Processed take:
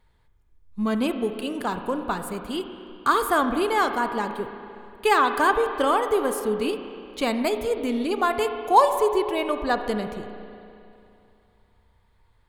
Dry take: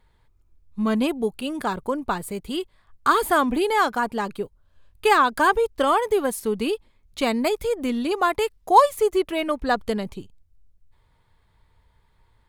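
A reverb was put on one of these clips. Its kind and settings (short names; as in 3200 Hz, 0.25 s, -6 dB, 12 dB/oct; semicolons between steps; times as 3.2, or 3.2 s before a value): spring tank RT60 2.7 s, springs 33/59 ms, chirp 45 ms, DRR 7.5 dB; gain -2 dB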